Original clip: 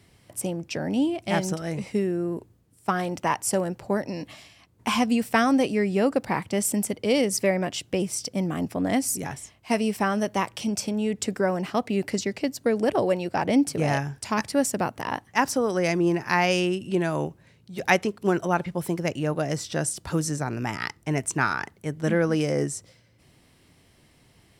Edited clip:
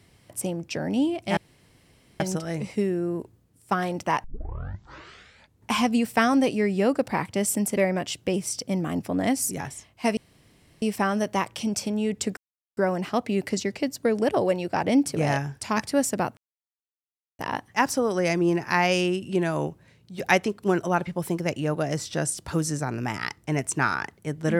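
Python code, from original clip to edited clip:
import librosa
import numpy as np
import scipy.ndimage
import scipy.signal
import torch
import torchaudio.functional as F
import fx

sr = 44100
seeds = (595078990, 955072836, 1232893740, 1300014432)

y = fx.edit(x, sr, fx.insert_room_tone(at_s=1.37, length_s=0.83),
    fx.tape_start(start_s=3.41, length_s=1.47),
    fx.cut(start_s=6.94, length_s=0.49),
    fx.insert_room_tone(at_s=9.83, length_s=0.65),
    fx.insert_silence(at_s=11.38, length_s=0.4),
    fx.insert_silence(at_s=14.98, length_s=1.02), tone=tone)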